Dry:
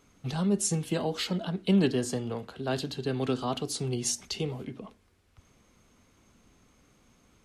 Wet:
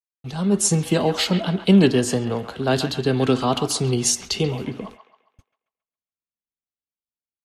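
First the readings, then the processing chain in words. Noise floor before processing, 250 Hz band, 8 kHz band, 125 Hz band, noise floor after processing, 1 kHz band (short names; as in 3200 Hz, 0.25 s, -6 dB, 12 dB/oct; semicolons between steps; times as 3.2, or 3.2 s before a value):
-65 dBFS, +9.0 dB, +9.5 dB, +9.5 dB, under -85 dBFS, +10.5 dB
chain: gate -51 dBFS, range -57 dB; AGC gain up to 11.5 dB; on a send: band-limited delay 0.136 s, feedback 41%, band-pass 1500 Hz, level -8 dB; on the sum: gain -1 dB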